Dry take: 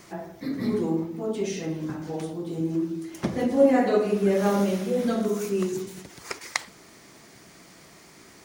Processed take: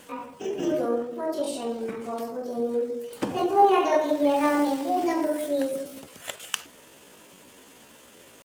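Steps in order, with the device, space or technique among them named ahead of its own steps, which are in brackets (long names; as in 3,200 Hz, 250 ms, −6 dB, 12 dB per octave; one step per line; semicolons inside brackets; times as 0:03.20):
chipmunk voice (pitch shifter +6.5 semitones)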